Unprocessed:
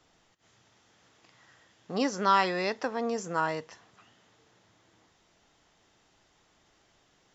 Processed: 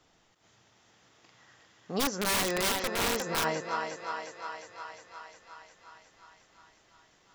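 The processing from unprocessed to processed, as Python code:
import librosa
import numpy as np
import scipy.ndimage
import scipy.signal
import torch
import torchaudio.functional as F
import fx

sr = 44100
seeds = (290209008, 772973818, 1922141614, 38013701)

y = fx.echo_thinned(x, sr, ms=357, feedback_pct=71, hz=340.0, wet_db=-5.5)
y = fx.overflow_wrap(y, sr, gain_db=22.0, at=(1.99, 3.43), fade=0.02)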